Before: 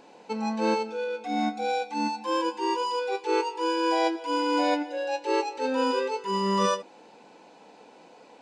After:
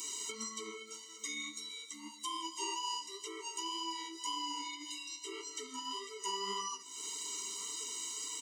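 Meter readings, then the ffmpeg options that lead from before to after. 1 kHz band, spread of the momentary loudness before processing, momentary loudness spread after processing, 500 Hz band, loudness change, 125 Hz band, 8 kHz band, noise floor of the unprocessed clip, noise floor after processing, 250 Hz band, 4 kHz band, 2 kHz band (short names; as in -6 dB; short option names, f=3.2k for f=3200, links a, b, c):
-15.0 dB, 6 LU, 6 LU, -22.5 dB, -12.5 dB, n/a, +6.0 dB, -53 dBFS, -52 dBFS, -21.0 dB, -3.0 dB, -13.0 dB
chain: -filter_complex "[0:a]highpass=480,bandreject=f=4.8k:w=11,acrossover=split=2900[a][b];[b]acompressor=threshold=-55dB:ratio=4:attack=1:release=60[c];[a][c]amix=inputs=2:normalize=0,highshelf=f=5.1k:t=q:w=1.5:g=7.5,alimiter=limit=-19.5dB:level=0:latency=1:release=347,acompressor=threshold=-43dB:ratio=10,flanger=delay=6.1:depth=6.6:regen=27:speed=1.8:shape=sinusoidal,aexciter=amount=7:drive=5.9:freq=2.4k,aecho=1:1:993:0.112,afftfilt=real='re*eq(mod(floor(b*sr/1024/460),2),0)':imag='im*eq(mod(floor(b*sr/1024/460),2),0)':win_size=1024:overlap=0.75,volume=8.5dB"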